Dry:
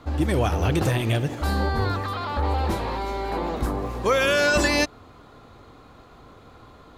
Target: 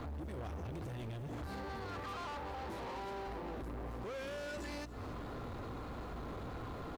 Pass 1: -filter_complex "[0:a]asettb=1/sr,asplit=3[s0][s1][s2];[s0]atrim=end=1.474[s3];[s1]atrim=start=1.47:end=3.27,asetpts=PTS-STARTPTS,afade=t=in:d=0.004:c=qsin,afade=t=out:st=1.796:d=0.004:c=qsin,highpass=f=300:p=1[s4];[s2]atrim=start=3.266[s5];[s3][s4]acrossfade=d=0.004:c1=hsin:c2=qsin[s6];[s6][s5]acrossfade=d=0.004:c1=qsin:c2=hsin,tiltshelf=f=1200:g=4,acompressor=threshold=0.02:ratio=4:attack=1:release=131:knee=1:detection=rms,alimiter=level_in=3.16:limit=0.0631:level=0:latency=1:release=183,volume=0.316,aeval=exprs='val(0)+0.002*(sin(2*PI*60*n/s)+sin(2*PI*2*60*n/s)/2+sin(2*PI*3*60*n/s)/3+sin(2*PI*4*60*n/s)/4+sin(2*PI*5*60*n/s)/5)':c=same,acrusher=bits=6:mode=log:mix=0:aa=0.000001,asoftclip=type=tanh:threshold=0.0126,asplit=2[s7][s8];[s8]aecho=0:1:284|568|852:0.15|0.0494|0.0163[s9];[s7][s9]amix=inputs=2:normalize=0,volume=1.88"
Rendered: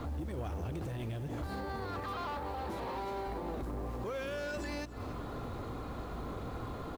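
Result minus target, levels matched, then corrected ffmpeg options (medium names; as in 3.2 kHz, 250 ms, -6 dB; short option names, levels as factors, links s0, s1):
saturation: distortion -8 dB
-filter_complex "[0:a]asettb=1/sr,asplit=3[s0][s1][s2];[s0]atrim=end=1.474[s3];[s1]atrim=start=1.47:end=3.27,asetpts=PTS-STARTPTS,afade=t=in:d=0.004:c=qsin,afade=t=out:st=1.796:d=0.004:c=qsin,highpass=f=300:p=1[s4];[s2]atrim=start=3.266[s5];[s3][s4]acrossfade=d=0.004:c1=hsin:c2=qsin[s6];[s6][s5]acrossfade=d=0.004:c1=qsin:c2=hsin,tiltshelf=f=1200:g=4,acompressor=threshold=0.02:ratio=4:attack=1:release=131:knee=1:detection=rms,alimiter=level_in=3.16:limit=0.0631:level=0:latency=1:release=183,volume=0.316,aeval=exprs='val(0)+0.002*(sin(2*PI*60*n/s)+sin(2*PI*2*60*n/s)/2+sin(2*PI*3*60*n/s)/3+sin(2*PI*4*60*n/s)/4+sin(2*PI*5*60*n/s)/5)':c=same,acrusher=bits=6:mode=log:mix=0:aa=0.000001,asoftclip=type=tanh:threshold=0.00501,asplit=2[s7][s8];[s8]aecho=0:1:284|568|852:0.15|0.0494|0.0163[s9];[s7][s9]amix=inputs=2:normalize=0,volume=1.88"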